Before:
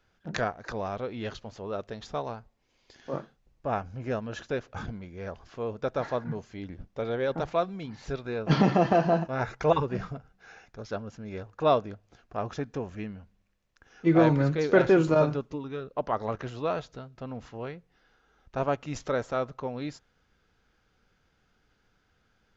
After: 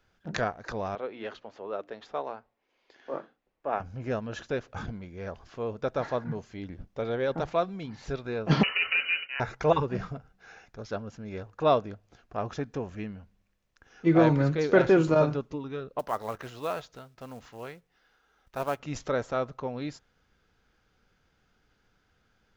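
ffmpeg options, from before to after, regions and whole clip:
-filter_complex "[0:a]asettb=1/sr,asplit=3[a][b][c];[a]atrim=end=0.954[d];[b]atrim=start=0.95:end=3.8,asetpts=PTS-STARTPTS,afade=t=in:d=0.004:c=qsin,afade=t=out:st=2.846:d=0.004:c=qsin,acrossover=split=260 3300:gain=0.1 1 0.224[e][f][g];[e][f][g]amix=inputs=3:normalize=0,bandreject=f=60:t=h:w=6,bandreject=f=120:t=h:w=6,bandreject=f=180:t=h:w=6,bandreject=f=240:t=h:w=6,bandreject=f=300:t=h:w=6[h];[c]atrim=start=3.796[i];[d][h]acrossfade=d=0.004:c1=hsin:c2=qsin[j];[j][i]acrossfade=d=0.004:c1=qsin:c2=hsin,asettb=1/sr,asplit=3[k][l][m];[k]atrim=end=8.634[n];[l]atrim=start=8.63:end=9.4,asetpts=PTS-STARTPTS,afade=t=in:d=0.004:c=qsin,afade=t=out:st=0.766:d=0.004:c=qsin,lowshelf=f=490:g=-11.5,lowpass=f=2.6k:t=q:w=0.5098,lowpass=f=2.6k:t=q:w=0.6013,lowpass=f=2.6k:t=q:w=0.9,lowpass=f=2.6k:t=q:w=2.563,afreqshift=-3100[o];[m]atrim=start=9.396[p];[n][o]acrossfade=d=0.004:c1=hsin:c2=qsin[q];[q][p]acrossfade=d=0.004:c1=qsin:c2=hsin,asettb=1/sr,asplit=3[r][s][t];[r]atrim=end=15.994[u];[s]atrim=start=15.99:end=18.8,asetpts=PTS-STARTPTS,afade=t=in:d=0.004:c=qsin,afade=t=out:st=2.806:d=0.004:c=qsin,acrusher=bits=6:mode=log:mix=0:aa=0.000001,lowshelf=f=460:g=-8[v];[t]atrim=start=18.796[w];[u][v]acrossfade=d=0.004:c1=hsin:c2=qsin[x];[x][w]acrossfade=d=0.004:c1=qsin:c2=hsin"

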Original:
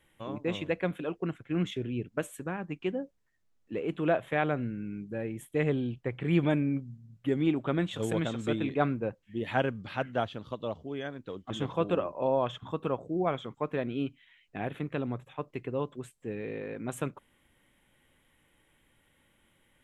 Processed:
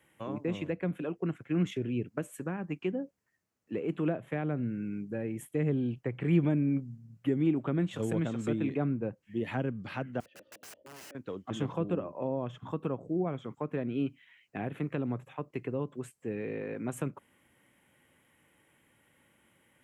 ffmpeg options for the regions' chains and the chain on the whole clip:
-filter_complex "[0:a]asettb=1/sr,asplit=3[a][b][c];[a]atrim=end=10.204[d];[b]atrim=start=10.2:end=11.15,asetpts=PTS-STARTPTS,afade=t=in:d=0.004:c=qsin,afade=t=out:st=0.946:d=0.004:c=qsin,asplit=3[e][f][g];[e]bandpass=f=530:t=q:w=8,volume=0dB[h];[f]bandpass=f=1.84k:t=q:w=8,volume=-6dB[i];[g]bandpass=f=2.48k:t=q:w=8,volume=-9dB[j];[h][i][j]amix=inputs=3:normalize=0,aecho=1:1:3.3:0.78,atrim=end_sample=41895,aeval=exprs='(mod(188*val(0)+1,2)-1)/188':c=same[k];[c]atrim=start=11.146[l];[d][k]acrossfade=d=0.004:c1=hsin:c2=qsin[m];[m][l]acrossfade=d=0.004:c1=qsin:c2=hsin,highpass=99,equalizer=f=3.6k:w=3.4:g=-7.5,acrossover=split=350[n][o];[o]acompressor=threshold=-39dB:ratio=6[p];[n][p]amix=inputs=2:normalize=0,volume=2dB"

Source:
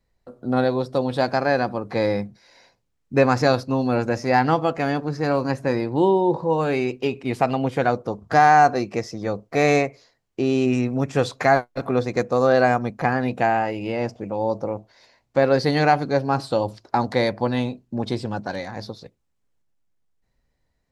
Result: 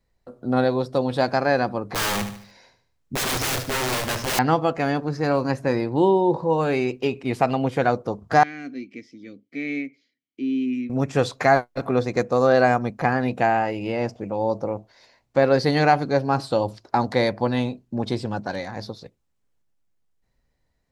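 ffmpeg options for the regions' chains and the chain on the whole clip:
-filter_complex "[0:a]asettb=1/sr,asplit=3[a][b][c];[a]atrim=end=1.874[d];[b]atrim=start=1.87:end=4.39,asetpts=PTS-STARTPTS,afade=t=in:d=0.004:c=qsin,afade=t=out:st=2.516:d=0.004:c=qsin,equalizer=f=76:w=1.3:g=5,aeval=exprs='(mod(10*val(0)+1,2)-1)/10':c=same,aecho=1:1:74|148|222|296:0.316|0.133|0.0558|0.0234,atrim=end_sample=111132[e];[c]atrim=start=4.386[f];[d][e]acrossfade=d=0.004:c1=hsin:c2=qsin[g];[g][f]acrossfade=d=0.004:c1=qsin:c2=hsin,asettb=1/sr,asplit=3[h][i][j];[h]atrim=end=8.434[k];[i]atrim=start=8.43:end=10.9,asetpts=PTS-STARTPTS,afade=t=in:d=0.004:c=qsin,afade=t=out:st=2.466:d=0.004:c=qsin,asplit=3[l][m][n];[l]bandpass=f=270:t=q:w=8,volume=0dB[o];[m]bandpass=f=2.29k:t=q:w=8,volume=-6dB[p];[n]bandpass=f=3.01k:t=q:w=8,volume=-9dB[q];[o][p][q]amix=inputs=3:normalize=0,highshelf=f=4.1k:g=11,acrossover=split=3600[r][s];[s]acompressor=threshold=-55dB:ratio=4:attack=1:release=60[t];[r][t]amix=inputs=2:normalize=0[u];[j]atrim=start=10.896[v];[k][u]acrossfade=d=0.004:c1=hsin:c2=qsin[w];[w][v]acrossfade=d=0.004:c1=qsin:c2=hsin"

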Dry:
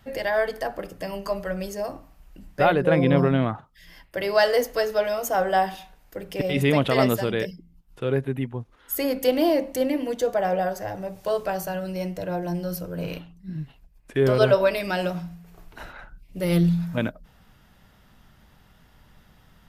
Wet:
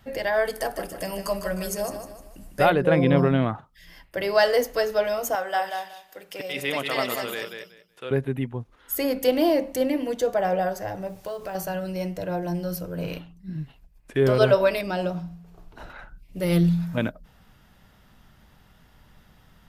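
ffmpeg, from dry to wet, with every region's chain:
-filter_complex "[0:a]asettb=1/sr,asplit=3[a][b][c];[a]atrim=end=0.454[d];[b]atrim=start=0.45:end=2.7,asetpts=PTS-STARTPTS,afade=t=in:d=0.004:c=qsin,afade=t=out:st=2.246:d=0.004:c=qsin,equalizer=f=10k:t=o:w=1.2:g=13.5,aecho=1:1:153|306|459|612:0.376|0.15|0.0601|0.0241,atrim=end_sample=99225[e];[c]atrim=start=2.696[f];[d][e]acrossfade=d=0.004:c1=hsin:c2=qsin[g];[g][f]acrossfade=d=0.004:c1=qsin:c2=hsin,asettb=1/sr,asplit=3[h][i][j];[h]atrim=end=5.354[k];[i]atrim=start=5.35:end=8.11,asetpts=PTS-STARTPTS,afade=t=in:d=0.004:c=qsin,afade=t=out:st=2.756:d=0.004:c=qsin,highpass=f=1.2k:p=1,aecho=1:1:187|374|561:0.501|0.0902|0.0162,atrim=end_sample=121716[l];[j]atrim=start=8.106[m];[k][l]acrossfade=d=0.004:c1=hsin:c2=qsin[n];[n][m]acrossfade=d=0.004:c1=qsin:c2=hsin,asettb=1/sr,asplit=3[o][p][q];[o]atrim=end=11.074[r];[p]atrim=start=11.07:end=11.55,asetpts=PTS-STARTPTS,afade=t=in:d=0.004:c=qsin,afade=t=out:st=0.476:d=0.004:c=qsin,acompressor=threshold=-31dB:ratio=3:attack=3.2:release=140:knee=1:detection=peak,acrusher=bits=7:mode=log:mix=0:aa=0.000001[s];[q]atrim=start=11.546[t];[r][s]acrossfade=d=0.004:c1=hsin:c2=qsin[u];[u][t]acrossfade=d=0.004:c1=qsin:c2=hsin,asettb=1/sr,asplit=3[v][w][x];[v]atrim=end=14.814[y];[w]atrim=start=14.81:end=15.9,asetpts=PTS-STARTPTS,afade=t=in:d=0.004:c=qsin,afade=t=out:st=1.086:d=0.004:c=qsin,lowpass=f=3.8k:p=1,equalizer=f=2k:w=1.3:g=-7[z];[x]atrim=start=15.896[aa];[y][z]acrossfade=d=0.004:c1=hsin:c2=qsin[ab];[ab][aa]acrossfade=d=0.004:c1=qsin:c2=hsin"

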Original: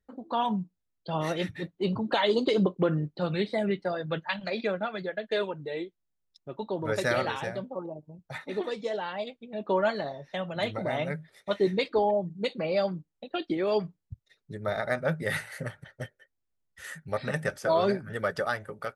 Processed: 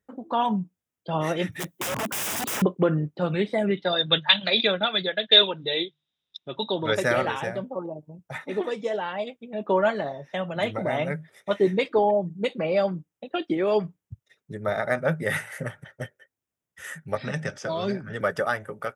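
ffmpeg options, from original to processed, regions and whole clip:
-filter_complex "[0:a]asettb=1/sr,asplit=3[a][b][c];[a]atrim=end=1.524[d];[b]atrim=start=1.52:end=2.62,asetpts=PTS-STARTPTS,afade=t=in:d=0.004:c=qsin,afade=t=out:st=1.096:d=0.004:c=qsin,highpass=41,aemphasis=mode=production:type=75fm,aeval=exprs='(mod(23.7*val(0)+1,2)-1)/23.7':c=same[e];[c]atrim=start=2.616[f];[d][e]acrossfade=d=0.004:c1=hsin:c2=qsin[g];[g][f]acrossfade=d=0.004:c1=qsin:c2=hsin,asettb=1/sr,asplit=3[h][i][j];[h]atrim=end=3.774[k];[i]atrim=start=3.77:end=6.95,asetpts=PTS-STARTPTS,afade=t=in:d=0.004:c=qsin,afade=t=out:st=3.176:d=0.004:c=qsin,lowpass=f=3.7k:t=q:w=14,highshelf=f=2.5k:g=6.5,bandreject=f=50:t=h:w=6,bandreject=f=100:t=h:w=6,bandreject=f=150:t=h:w=6[l];[j]atrim=start=6.946[m];[k][l]acrossfade=d=0.004:c1=hsin:c2=qsin[n];[n][m]acrossfade=d=0.004:c1=qsin:c2=hsin,asettb=1/sr,asplit=3[o][p][q];[o]atrim=end=17.154[r];[p]atrim=start=17.15:end=18.21,asetpts=PTS-STARTPTS,afade=t=in:d=0.004:c=qsin,afade=t=out:st=1.056:d=0.004:c=qsin,lowpass=f=5.2k:t=q:w=1.7,acrossover=split=240|3000[s][t][u];[t]acompressor=threshold=-35dB:ratio=2.5:attack=3.2:release=140:knee=2.83:detection=peak[v];[s][v][u]amix=inputs=3:normalize=0[w];[q]atrim=start=18.206[x];[r][w]acrossfade=d=0.004:c1=hsin:c2=qsin[y];[y][x]acrossfade=d=0.004:c1=qsin:c2=hsin,highpass=95,equalizer=f=4.3k:w=5.4:g=-14.5,volume=4dB"

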